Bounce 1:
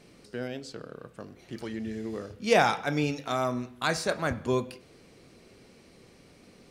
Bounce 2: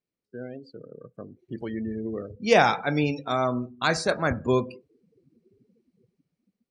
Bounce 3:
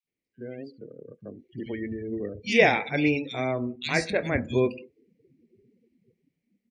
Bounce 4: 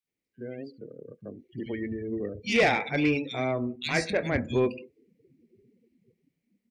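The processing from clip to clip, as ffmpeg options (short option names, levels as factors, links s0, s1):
-af "dynaudnorm=f=390:g=5:m=2.24,afftdn=nr=34:nf=-34,volume=0.75"
-filter_complex "[0:a]firequalizer=gain_entry='entry(160,0);entry(230,4);entry(1300,-13);entry(2000,10);entry(4100,-2);entry(11000,-6)':delay=0.05:min_phase=1,acrossover=split=210|2800[s0][s1][s2];[s0]adelay=40[s3];[s1]adelay=70[s4];[s3][s4][s2]amix=inputs=3:normalize=0"
-af "asoftclip=type=tanh:threshold=0.178"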